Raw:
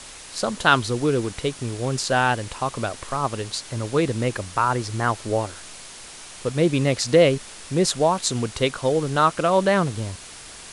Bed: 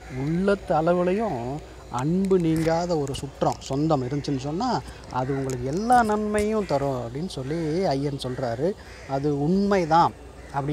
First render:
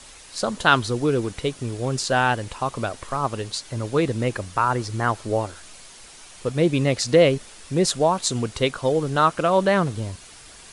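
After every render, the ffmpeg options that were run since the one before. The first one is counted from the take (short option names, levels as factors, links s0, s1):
-af "afftdn=nr=6:nf=-41"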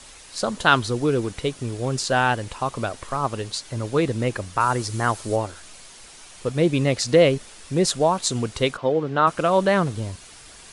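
-filter_complex "[0:a]asettb=1/sr,asplit=3[s0][s1][s2];[s0]atrim=end=4.604[s3];[s1]atrim=start=4.6:end=5.36,asetpts=PTS-STARTPTS,afade=t=in:d=0.004:c=qsin,afade=t=out:st=0.756:d=0.004:c=qsin,highshelf=f=6000:g=10[s4];[s2]atrim=start=5.356[s5];[s3][s4]acrossfade=d=0.004:c1=hsin:c2=qsin[s6];[s6][s5]acrossfade=d=0.004:c1=qsin:c2=hsin,asplit=3[s7][s8][s9];[s7]afade=t=out:st=8.76:d=0.02[s10];[s8]highpass=150,lowpass=2900,afade=t=in:st=8.76:d=0.02,afade=t=out:st=9.26:d=0.02[s11];[s9]afade=t=in:st=9.26:d=0.02[s12];[s10][s11][s12]amix=inputs=3:normalize=0"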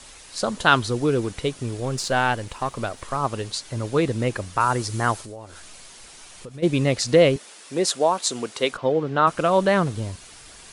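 -filter_complex "[0:a]asettb=1/sr,asplit=3[s0][s1][s2];[s0]atrim=end=1.804[s3];[s1]atrim=start=1.8:end=3.02,asetpts=PTS-STARTPTS,afade=t=in:d=0.004:c=qsin,afade=t=out:st=1.216:d=0.004:c=qsin,aeval=exprs='if(lt(val(0),0),0.708*val(0),val(0))':c=same[s4];[s2]atrim=start=3.016[s5];[s3][s4]acrossfade=d=0.004:c1=hsin:c2=qsin[s6];[s6][s5]acrossfade=d=0.004:c1=qsin:c2=hsin,asplit=3[s7][s8][s9];[s7]afade=t=out:st=5.21:d=0.02[s10];[s8]acompressor=threshold=0.0141:ratio=4:attack=3.2:release=140:knee=1:detection=peak,afade=t=in:st=5.21:d=0.02,afade=t=out:st=6.62:d=0.02[s11];[s9]afade=t=in:st=6.62:d=0.02[s12];[s10][s11][s12]amix=inputs=3:normalize=0,asettb=1/sr,asplit=3[s13][s14][s15];[s13]atrim=end=7.364[s16];[s14]atrim=start=7.36:end=8.73,asetpts=PTS-STARTPTS,afade=t=in:d=0.004:c=qsin,afade=t=out:st=1.366:d=0.004:c=qsin,highpass=300[s17];[s15]atrim=start=8.726[s18];[s16][s17]acrossfade=d=0.004:c1=hsin:c2=qsin[s19];[s19][s18]acrossfade=d=0.004:c1=qsin:c2=hsin"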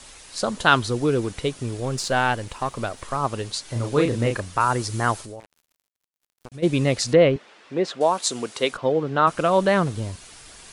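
-filter_complex "[0:a]asettb=1/sr,asplit=3[s0][s1][s2];[s0]atrim=end=3.654[s3];[s1]atrim=start=3.65:end=4.4,asetpts=PTS-STARTPTS,afade=t=in:d=0.004:c=qsin,afade=t=out:st=0.746:d=0.004:c=qsin,asplit=2[s4][s5];[s5]adelay=34,volume=0.596[s6];[s4][s6]amix=inputs=2:normalize=0,atrim=end_sample=33075[s7];[s2]atrim=start=4.396[s8];[s3][s7]acrossfade=d=0.004:c1=hsin:c2=qsin[s9];[s9][s8]acrossfade=d=0.004:c1=qsin:c2=hsin,asettb=1/sr,asplit=3[s10][s11][s12];[s10]atrim=end=5.404[s13];[s11]atrim=start=5.4:end=6.52,asetpts=PTS-STARTPTS,afade=t=in:d=0.004:c=qsin,afade=t=out:st=1.116:d=0.004:c=qsin,acrusher=bits=4:mix=0:aa=0.5[s14];[s12]atrim=start=6.516[s15];[s13][s14]acrossfade=d=0.004:c1=hsin:c2=qsin[s16];[s16][s15]acrossfade=d=0.004:c1=qsin:c2=hsin,asettb=1/sr,asplit=3[s17][s18][s19];[s17]atrim=end=7.134[s20];[s18]atrim=start=7.13:end=8.01,asetpts=PTS-STARTPTS,afade=t=in:d=0.004:c=qsin,afade=t=out:st=0.876:d=0.004:c=qsin,lowpass=2700[s21];[s19]atrim=start=8.006[s22];[s20][s21]acrossfade=d=0.004:c1=hsin:c2=qsin[s23];[s23][s22]acrossfade=d=0.004:c1=qsin:c2=hsin"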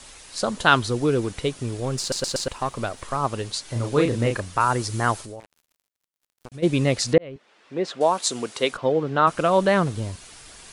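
-filter_complex "[0:a]asplit=6[s0][s1][s2][s3][s4][s5];[s0]atrim=end=2.122[s6];[s1]atrim=start=1.998:end=2.122[s7];[s2]atrim=start=1.998:end=2.122[s8];[s3]atrim=start=1.998:end=2.122[s9];[s4]atrim=start=2.478:end=7.18,asetpts=PTS-STARTPTS,afade=t=out:st=4.698:d=0.004:c=hsin[s10];[s5]atrim=start=7.18,asetpts=PTS-STARTPTS,afade=t=in:d=0.85[s11];[s6][s7]acrossfade=d=0.004:c1=hsin:c2=hsin[s12];[s12][s8]acrossfade=d=0.004:c1=hsin:c2=hsin[s13];[s13][s9]acrossfade=d=0.004:c1=hsin:c2=hsin[s14];[s10][s11]concat=n=2:v=0:a=1[s15];[s14][s15]acrossfade=d=0.004:c1=hsin:c2=hsin"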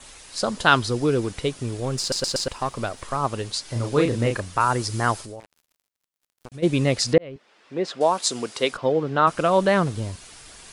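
-af "adynamicequalizer=threshold=0.00501:dfrequency=5000:dqfactor=7.6:tfrequency=5000:tqfactor=7.6:attack=5:release=100:ratio=0.375:range=3:mode=boostabove:tftype=bell"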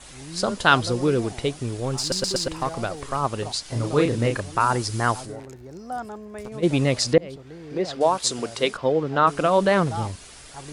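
-filter_complex "[1:a]volume=0.211[s0];[0:a][s0]amix=inputs=2:normalize=0"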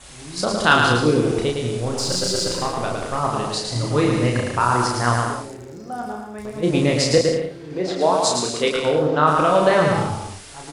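-filter_complex "[0:a]asplit=2[s0][s1];[s1]adelay=33,volume=0.668[s2];[s0][s2]amix=inputs=2:normalize=0,asplit=2[s3][s4];[s4]aecho=0:1:110|187|240.9|278.6|305:0.631|0.398|0.251|0.158|0.1[s5];[s3][s5]amix=inputs=2:normalize=0"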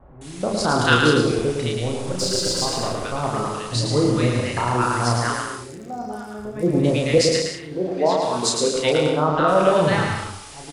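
-filter_complex "[0:a]acrossover=split=1100[s0][s1];[s1]adelay=210[s2];[s0][s2]amix=inputs=2:normalize=0"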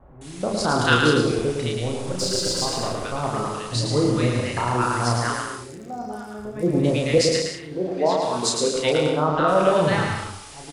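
-af "volume=0.841"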